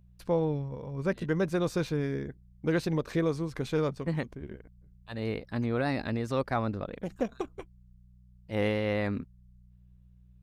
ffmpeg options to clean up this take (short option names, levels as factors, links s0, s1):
-af "bandreject=f=60.8:t=h:w=4,bandreject=f=121.6:t=h:w=4,bandreject=f=182.4:t=h:w=4"